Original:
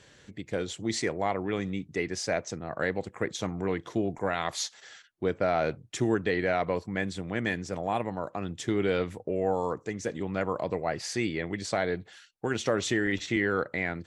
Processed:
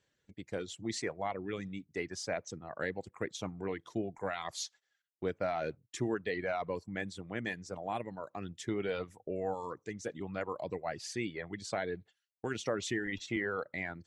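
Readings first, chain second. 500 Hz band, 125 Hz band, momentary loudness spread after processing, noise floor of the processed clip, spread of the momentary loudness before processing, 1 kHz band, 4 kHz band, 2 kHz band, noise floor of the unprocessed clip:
-7.5 dB, -9.0 dB, 6 LU, -82 dBFS, 7 LU, -7.5 dB, -7.0 dB, -7.5 dB, -58 dBFS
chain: gate -45 dBFS, range -15 dB; reverb removal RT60 0.91 s; trim -6.5 dB

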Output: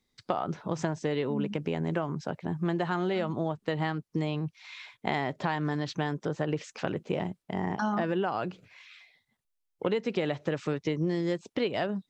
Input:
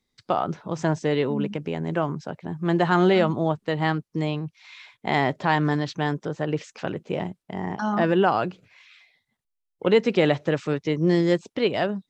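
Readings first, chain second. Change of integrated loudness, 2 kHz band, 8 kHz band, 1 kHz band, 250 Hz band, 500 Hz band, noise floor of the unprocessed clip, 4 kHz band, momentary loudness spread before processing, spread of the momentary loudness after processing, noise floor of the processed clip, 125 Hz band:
-7.0 dB, -7.5 dB, no reading, -7.5 dB, -6.5 dB, -7.5 dB, -80 dBFS, -7.0 dB, 11 LU, 6 LU, -80 dBFS, -6.0 dB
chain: compression 10:1, threshold -25 dBFS, peak gain reduction 12.5 dB

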